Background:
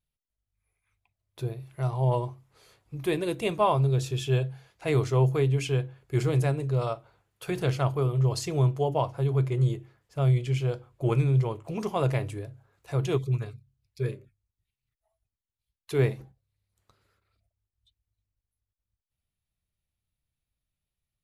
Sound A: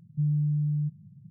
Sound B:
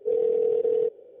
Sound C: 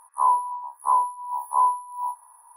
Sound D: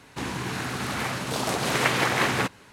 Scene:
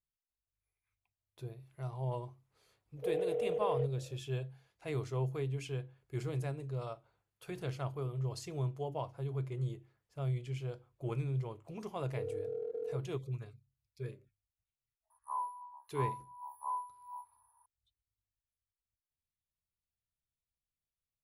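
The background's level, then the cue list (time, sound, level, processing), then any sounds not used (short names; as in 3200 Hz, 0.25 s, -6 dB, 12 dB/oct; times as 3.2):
background -12.5 dB
2.97 add B -0.5 dB + steep high-pass 570 Hz
12.1 add B -16 dB + Wiener smoothing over 15 samples
15.1 add C -18 dB
not used: A, D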